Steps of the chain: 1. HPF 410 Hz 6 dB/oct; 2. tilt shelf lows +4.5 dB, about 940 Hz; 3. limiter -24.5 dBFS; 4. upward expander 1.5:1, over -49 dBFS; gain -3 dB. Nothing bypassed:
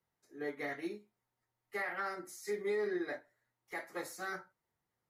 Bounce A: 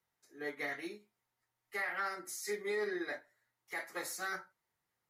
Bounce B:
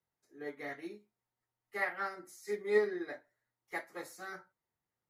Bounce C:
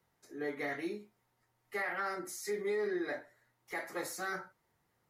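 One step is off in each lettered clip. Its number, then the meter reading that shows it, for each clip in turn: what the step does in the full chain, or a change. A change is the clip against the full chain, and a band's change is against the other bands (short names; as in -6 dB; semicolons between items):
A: 2, 8 kHz band +6.0 dB; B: 3, crest factor change +8.5 dB; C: 4, 8 kHz band +3.5 dB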